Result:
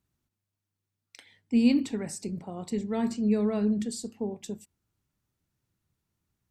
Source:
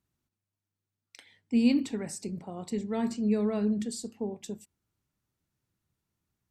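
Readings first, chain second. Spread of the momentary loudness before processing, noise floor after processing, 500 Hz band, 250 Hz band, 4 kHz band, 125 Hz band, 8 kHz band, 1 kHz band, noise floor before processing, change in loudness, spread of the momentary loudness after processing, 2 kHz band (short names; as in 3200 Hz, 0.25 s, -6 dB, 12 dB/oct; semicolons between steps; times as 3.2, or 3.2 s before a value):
14 LU, under -85 dBFS, +1.0 dB, +1.5 dB, +1.0 dB, +2.0 dB, +1.0 dB, +1.0 dB, under -85 dBFS, +1.5 dB, 14 LU, +1.0 dB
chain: low shelf 120 Hz +3.5 dB; gain +1 dB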